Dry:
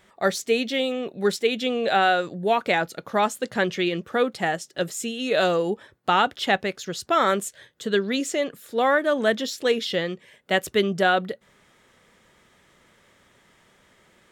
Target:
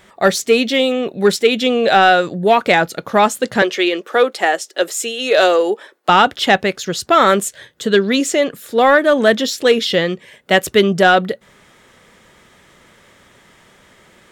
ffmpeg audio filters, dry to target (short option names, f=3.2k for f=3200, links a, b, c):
-filter_complex "[0:a]asettb=1/sr,asplit=3[a][b][c];[a]atrim=end=3.624[d];[b]atrim=start=3.62:end=6.09,asetpts=PTS-STARTPTS,afade=t=in:d=0.004:c=qsin,afade=t=out:st=2.466:d=0.004:c=qsin,highpass=f=330:w=0.5412,highpass=f=330:w=1.3066[e];[c]atrim=start=6.086[f];[d][e]acrossfade=d=0.004:c1=hsin:c2=qsin[g];[g][f]acrossfade=d=0.004:c1=qsin:c2=hsin,acontrast=88,volume=2.5dB"